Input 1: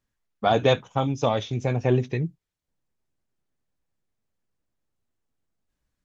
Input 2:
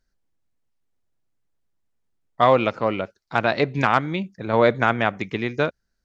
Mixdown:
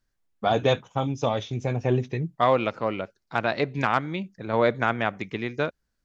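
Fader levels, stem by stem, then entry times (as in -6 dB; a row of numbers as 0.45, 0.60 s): -2.0, -4.5 dB; 0.00, 0.00 s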